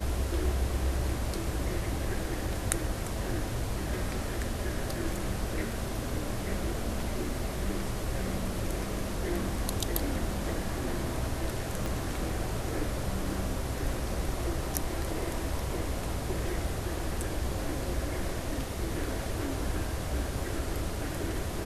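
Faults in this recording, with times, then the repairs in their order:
11.86 pop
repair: de-click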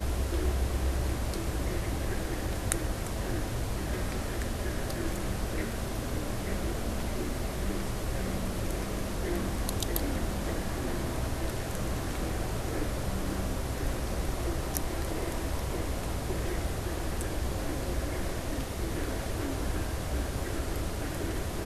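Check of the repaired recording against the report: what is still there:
11.86 pop

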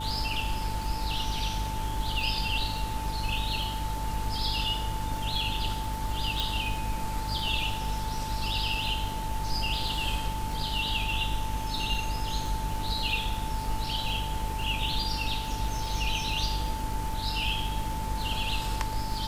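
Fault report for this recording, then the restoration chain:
crackle 56/s -34 dBFS
hum 50 Hz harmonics 6 -35 dBFS
tone 880 Hz -35 dBFS
6.4 pop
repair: de-click; de-hum 50 Hz, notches 6; notch 880 Hz, Q 30

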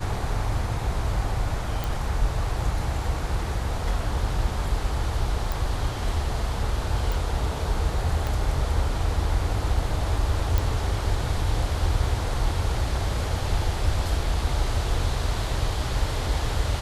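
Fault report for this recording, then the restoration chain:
1.84 pop
5.52 pop
7.12 pop
8.27 pop -15 dBFS
10.58 pop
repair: de-click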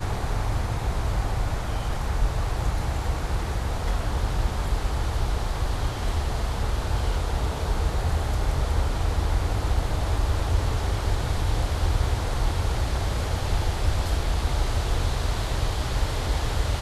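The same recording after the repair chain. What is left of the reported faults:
7.12 pop
8.27 pop

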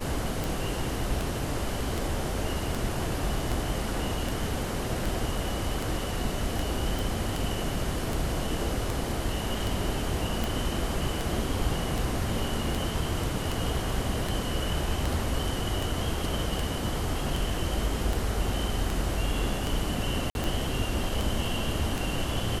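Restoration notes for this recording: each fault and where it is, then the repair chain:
tick 78 rpm
6.99 pop
20.3–20.35 gap 51 ms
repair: de-click; interpolate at 20.3, 51 ms

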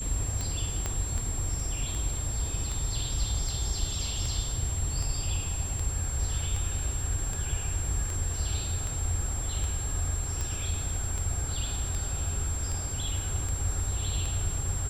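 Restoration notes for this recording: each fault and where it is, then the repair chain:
tick 78 rpm
tone 7500 Hz -35 dBFS
0.86 pop -16 dBFS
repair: de-click; notch 7500 Hz, Q 30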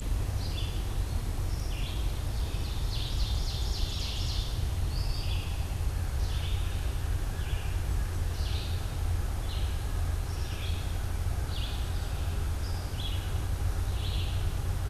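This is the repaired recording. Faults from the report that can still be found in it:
0.86 pop

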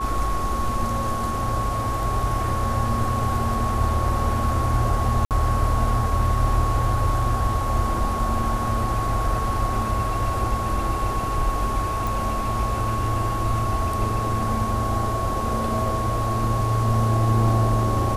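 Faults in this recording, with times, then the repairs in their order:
tone 1100 Hz -26 dBFS
5.25–5.31 gap 58 ms
12.07 pop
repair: de-click; notch 1100 Hz, Q 30; interpolate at 5.25, 58 ms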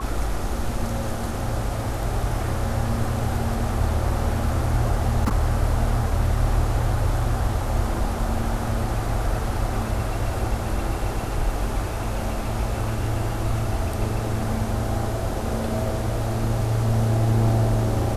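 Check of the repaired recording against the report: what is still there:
none

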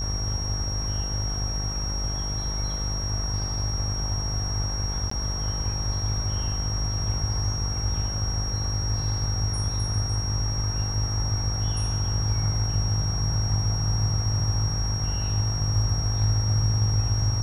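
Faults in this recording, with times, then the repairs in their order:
buzz 50 Hz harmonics 39 -30 dBFS
tone 5600 Hz -31 dBFS
5.1–5.11 gap 14 ms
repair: notch 5600 Hz, Q 30; de-hum 50 Hz, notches 39; interpolate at 5.1, 14 ms

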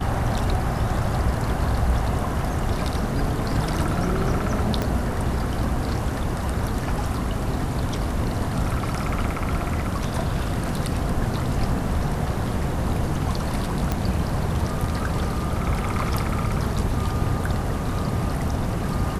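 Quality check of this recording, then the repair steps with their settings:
4.82 pop -11 dBFS
13.92 pop -10 dBFS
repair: de-click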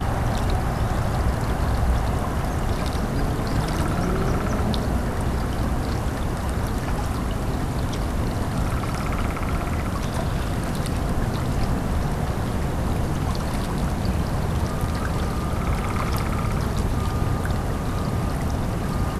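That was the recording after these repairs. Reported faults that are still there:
4.82 pop

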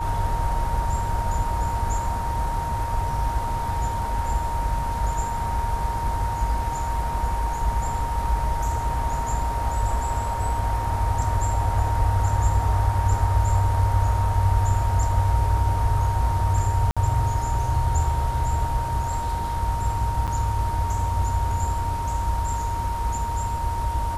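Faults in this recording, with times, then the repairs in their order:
tone 930 Hz -27 dBFS
16.91–16.97 gap 56 ms
20.27–20.28 gap 7.7 ms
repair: notch 930 Hz, Q 30; interpolate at 16.91, 56 ms; interpolate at 20.27, 7.7 ms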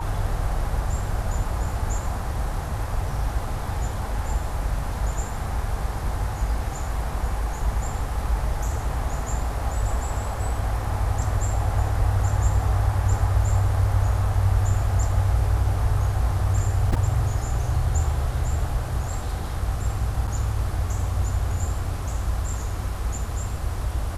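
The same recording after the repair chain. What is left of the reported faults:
none

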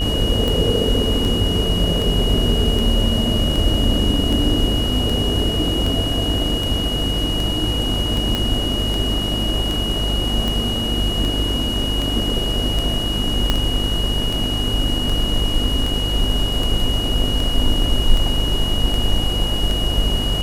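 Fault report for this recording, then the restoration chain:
buzz 50 Hz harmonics 37 -24 dBFS
tick 78 rpm
tone 2900 Hz -23 dBFS
8.35 pop -7 dBFS
13.5 pop -4 dBFS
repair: de-click; de-hum 50 Hz, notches 37; notch 2900 Hz, Q 30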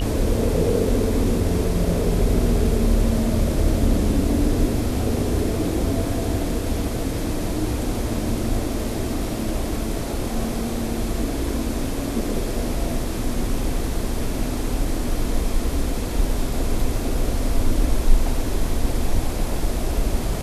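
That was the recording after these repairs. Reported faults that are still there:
8.35 pop
13.5 pop

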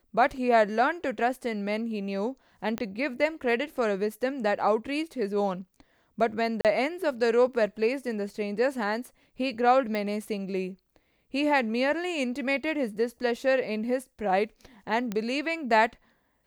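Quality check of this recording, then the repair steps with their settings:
2.78 pop -17 dBFS
6.61–6.65 gap 38 ms
9.95 pop -20 dBFS
15.12 pop -18 dBFS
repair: de-click; interpolate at 6.61, 38 ms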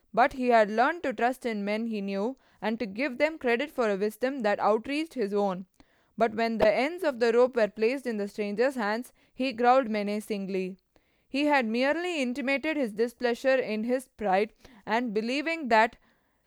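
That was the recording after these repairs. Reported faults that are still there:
none

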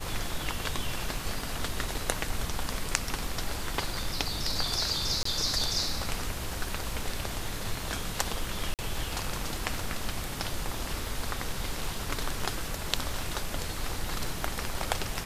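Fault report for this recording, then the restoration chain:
crackle 30/s -38 dBFS
5.23–5.25 gap 24 ms
8.74–8.79 gap 48 ms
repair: de-click; interpolate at 5.23, 24 ms; interpolate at 8.74, 48 ms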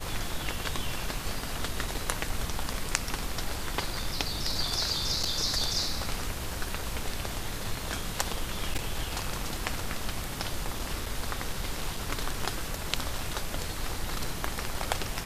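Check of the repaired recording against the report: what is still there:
none

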